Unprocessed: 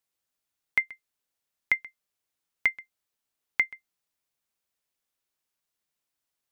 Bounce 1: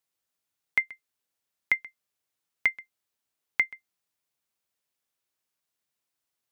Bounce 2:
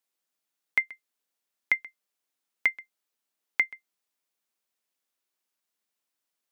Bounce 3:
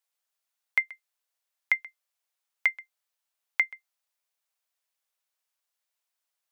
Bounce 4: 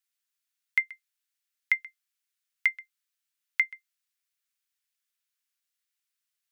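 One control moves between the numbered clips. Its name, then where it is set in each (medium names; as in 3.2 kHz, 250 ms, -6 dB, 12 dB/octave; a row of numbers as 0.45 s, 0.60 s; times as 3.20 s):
high-pass, cutoff frequency: 61 Hz, 180 Hz, 540 Hz, 1.4 kHz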